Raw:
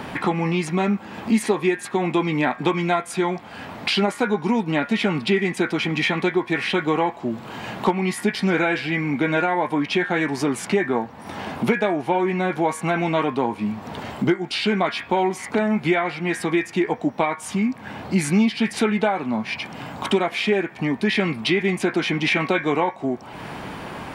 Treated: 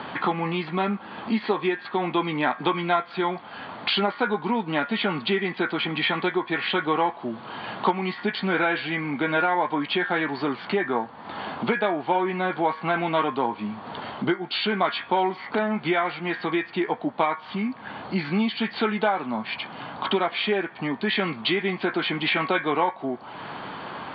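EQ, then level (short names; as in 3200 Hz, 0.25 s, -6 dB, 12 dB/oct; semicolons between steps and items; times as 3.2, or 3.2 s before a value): HPF 86 Hz; rippled Chebyshev low-pass 4600 Hz, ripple 6 dB; low shelf 190 Hz -5 dB; +2.0 dB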